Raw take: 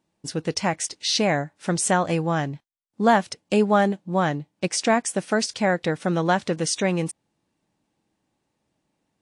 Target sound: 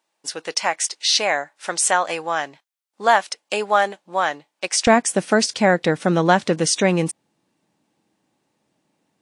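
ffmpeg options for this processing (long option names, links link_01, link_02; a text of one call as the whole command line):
ffmpeg -i in.wav -af "asetnsamples=nb_out_samples=441:pad=0,asendcmd='4.87 highpass f 140',highpass=710,volume=5.5dB" out.wav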